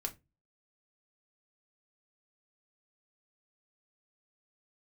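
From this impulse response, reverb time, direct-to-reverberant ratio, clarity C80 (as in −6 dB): 0.20 s, 3.0 dB, 27.0 dB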